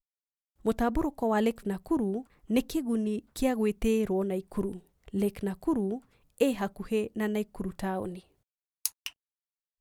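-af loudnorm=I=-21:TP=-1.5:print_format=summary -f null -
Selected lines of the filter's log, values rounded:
Input Integrated:    -31.2 LUFS
Input True Peak:      -6.8 dBTP
Input LRA:             5.5 LU
Input Threshold:     -41.7 LUFS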